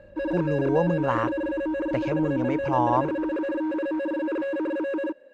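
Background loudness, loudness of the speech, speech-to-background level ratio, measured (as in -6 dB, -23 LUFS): -28.0 LUFS, -27.0 LUFS, 1.0 dB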